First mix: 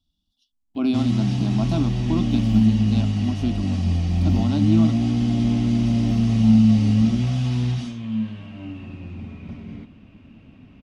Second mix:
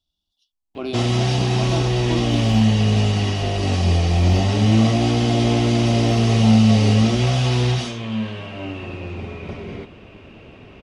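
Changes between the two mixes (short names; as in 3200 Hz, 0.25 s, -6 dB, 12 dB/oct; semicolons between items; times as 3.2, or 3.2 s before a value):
first sound +11.5 dB; second sound +4.0 dB; master: add resonant low shelf 320 Hz -7 dB, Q 3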